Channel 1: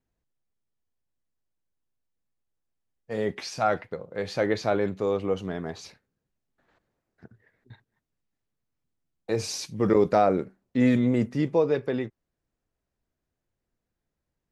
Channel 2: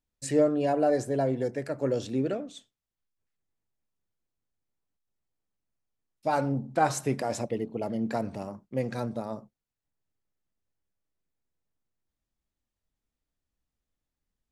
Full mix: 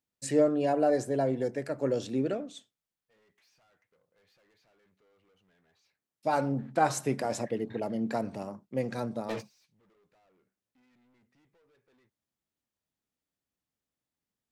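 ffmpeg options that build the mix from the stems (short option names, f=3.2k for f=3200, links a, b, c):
-filter_complex "[0:a]equalizer=f=2.1k:w=0.46:g=11,acompressor=threshold=-22dB:ratio=6,asoftclip=type=tanh:threshold=-34dB,volume=-1dB[a];[1:a]highpass=120,volume=-1dB,asplit=2[b][c];[c]apad=whole_len=640011[d];[a][d]sidechaingate=range=-31dB:threshold=-39dB:ratio=16:detection=peak[e];[e][b]amix=inputs=2:normalize=0"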